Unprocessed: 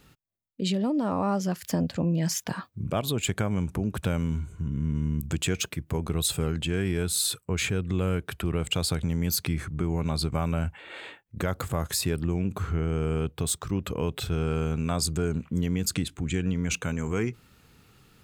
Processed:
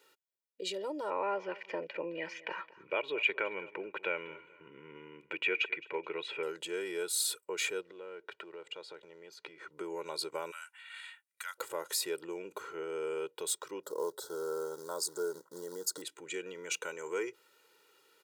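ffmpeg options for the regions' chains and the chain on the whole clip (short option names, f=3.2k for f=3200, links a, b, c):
-filter_complex "[0:a]asettb=1/sr,asplit=3[a][b][c];[a]atrim=end=1.104[d];[b]atrim=start=1.1:end=6.43,asetpts=PTS-STARTPTS,afade=t=in:d=0.004:c=qsin,afade=t=out:st=5.326:d=0.004:c=qsin,lowpass=f=2.4k:t=q:w=5.1,aemphasis=mode=reproduction:type=50fm,aecho=1:1:215|430:0.112|0.0314,atrim=end_sample=235053[e];[c]atrim=start=6.426[f];[d][e]acrossfade=d=0.004:c1=hsin:c2=qsin[g];[g][f]acrossfade=d=0.004:c1=qsin:c2=hsin,asettb=1/sr,asplit=3[h][i][j];[h]atrim=end=7.814[k];[i]atrim=start=7.81:end=9.71,asetpts=PTS-STARTPTS,afade=t=in:d=0.004:c=qsin,afade=t=out:st=1.896:d=0.004:c=qsin,acompressor=threshold=-33dB:ratio=4:attack=3.2:release=140:knee=1:detection=peak,acrusher=bits=8:mode=log:mix=0:aa=0.000001,lowpass=3.2k[l];[j]atrim=start=9.706[m];[k][l]acrossfade=d=0.004:c1=hsin:c2=qsin[n];[n][m]acrossfade=d=0.004:c1=qsin:c2=hsin,asettb=1/sr,asplit=3[o][p][q];[o]atrim=end=10.514[r];[p]atrim=start=10.51:end=11.58,asetpts=PTS-STARTPTS,afade=t=in:d=0.004:c=qsin,afade=t=out:st=1.066:d=0.004:c=qsin,highpass=f=1.3k:w=0.5412,highpass=f=1.3k:w=1.3066,equalizer=f=9.5k:w=1.9:g=10[s];[q]atrim=start=11.576[t];[r][s]acrossfade=d=0.004:c1=hsin:c2=qsin[u];[u][t]acrossfade=d=0.004:c1=qsin:c2=hsin,asettb=1/sr,asplit=3[v][w][x];[v]atrim=end=13.834[y];[w]atrim=start=13.83:end=16.02,asetpts=PTS-STARTPTS,afade=t=in:d=0.004:c=qsin,afade=t=out:st=2.186:d=0.004:c=qsin,acrusher=bits=5:mode=log:mix=0:aa=0.000001,asuperstop=centerf=2500:order=4:qfactor=0.82[z];[x]atrim=start=16.016[aa];[y][z]acrossfade=d=0.004:c1=hsin:c2=qsin[ab];[ab][aa]acrossfade=d=0.004:c1=qsin:c2=hsin,highpass=f=330:w=0.5412,highpass=f=330:w=1.3066,aecho=1:1:2.1:0.83,volume=-7.5dB"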